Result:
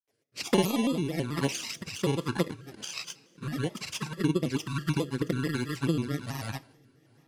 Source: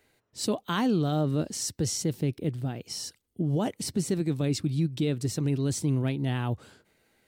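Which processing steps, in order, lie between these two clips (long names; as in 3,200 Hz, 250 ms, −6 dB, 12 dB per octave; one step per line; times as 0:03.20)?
samples in bit-reversed order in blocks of 32 samples
high-pass filter 400 Hz 6 dB per octave
transient designer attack +7 dB, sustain −5 dB
granular cloud, grains 20 per second, pitch spread up and down by 0 semitones
flanger swept by the level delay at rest 8 ms, full sweep at −26.5 dBFS
high-frequency loss of the air 54 metres
coupled-rooms reverb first 0.44 s, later 4.6 s, from −18 dB, DRR 14.5 dB
rotating-speaker cabinet horn 1.2 Hz
pitch modulation by a square or saw wave square 4.6 Hz, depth 160 cents
level +6.5 dB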